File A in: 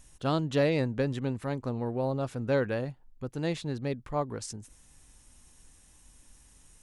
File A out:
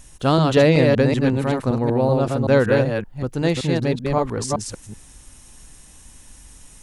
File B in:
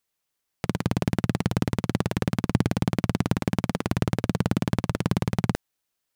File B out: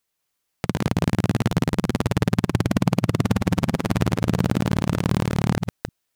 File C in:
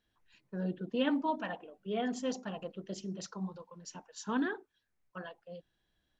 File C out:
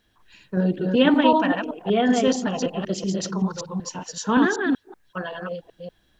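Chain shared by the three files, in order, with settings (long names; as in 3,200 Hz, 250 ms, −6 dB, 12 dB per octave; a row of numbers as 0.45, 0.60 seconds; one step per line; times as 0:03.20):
delay that plays each chunk backwards 190 ms, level −3 dB
normalise the peak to −3 dBFS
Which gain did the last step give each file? +10.5, +2.0, +13.5 decibels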